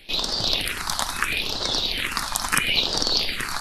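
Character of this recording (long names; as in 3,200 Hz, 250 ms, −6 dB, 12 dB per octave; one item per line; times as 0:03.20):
phaser sweep stages 4, 0.75 Hz, lowest notch 410–2,400 Hz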